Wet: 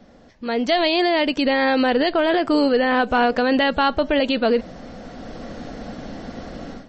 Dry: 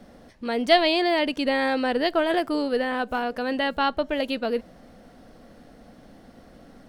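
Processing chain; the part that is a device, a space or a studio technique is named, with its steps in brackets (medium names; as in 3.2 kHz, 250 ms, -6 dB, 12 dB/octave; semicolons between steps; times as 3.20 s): low-bitrate web radio (level rider gain up to 16 dB; peak limiter -9 dBFS, peak gain reduction 8 dB; MP3 32 kbps 32 kHz)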